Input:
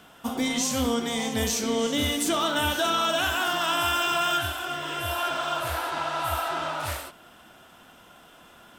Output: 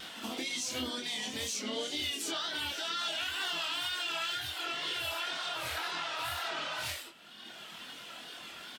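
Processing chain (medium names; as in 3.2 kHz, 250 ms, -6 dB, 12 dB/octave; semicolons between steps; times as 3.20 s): frequency weighting D; reverb removal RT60 1.2 s; bass shelf 390 Hz +2.5 dB; compression 2.5:1, threshold -41 dBFS, peak gain reduction 16 dB; peak limiter -28.5 dBFS, peak gain reduction 6 dB; wow and flutter 79 cents; harmony voices +4 st -9 dB, +5 st -16 dB, +7 st -15 dB; doubling 24 ms -4 dB; on a send: reverse echo 73 ms -11 dB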